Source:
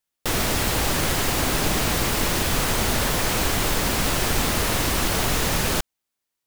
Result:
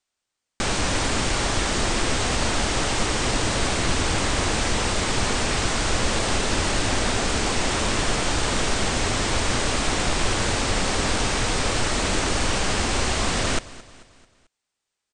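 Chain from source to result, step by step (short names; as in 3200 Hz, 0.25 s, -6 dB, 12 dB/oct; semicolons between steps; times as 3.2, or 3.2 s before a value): bell 360 Hz -7.5 dB 0.32 oct; on a send: feedback echo 94 ms, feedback 49%, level -19 dB; on the sum: speed mistake 78 rpm record played at 33 rpm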